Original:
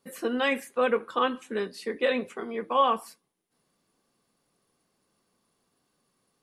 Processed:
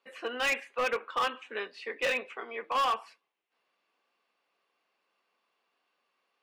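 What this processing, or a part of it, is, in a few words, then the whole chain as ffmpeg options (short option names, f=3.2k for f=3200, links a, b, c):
megaphone: -af "highpass=640,lowpass=3.2k,equalizer=f=2.6k:t=o:w=0.49:g=8,asoftclip=type=hard:threshold=-24dB"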